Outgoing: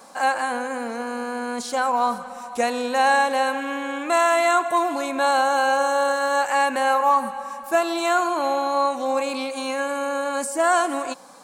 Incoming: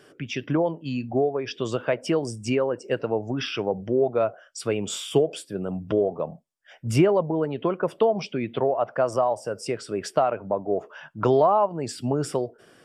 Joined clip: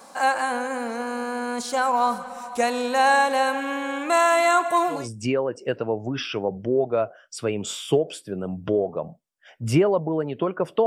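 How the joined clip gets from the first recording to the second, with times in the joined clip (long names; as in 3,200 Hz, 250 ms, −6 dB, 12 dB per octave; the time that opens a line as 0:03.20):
outgoing
0:04.98: continue with incoming from 0:02.21, crossfade 0.22 s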